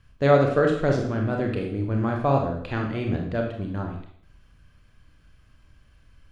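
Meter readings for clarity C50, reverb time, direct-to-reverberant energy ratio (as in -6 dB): 4.5 dB, 0.60 s, 1.0 dB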